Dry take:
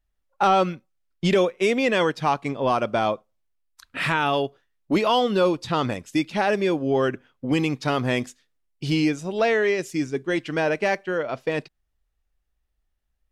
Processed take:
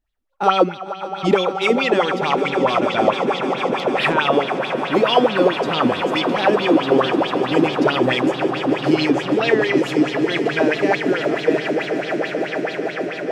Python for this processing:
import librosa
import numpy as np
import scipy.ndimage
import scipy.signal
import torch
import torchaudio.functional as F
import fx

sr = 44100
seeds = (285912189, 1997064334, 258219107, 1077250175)

y = fx.echo_swell(x, sr, ms=150, loudest=8, wet_db=-12)
y = fx.bell_lfo(y, sr, hz=4.6, low_hz=250.0, high_hz=4000.0, db=16)
y = y * 10.0 ** (-3.0 / 20.0)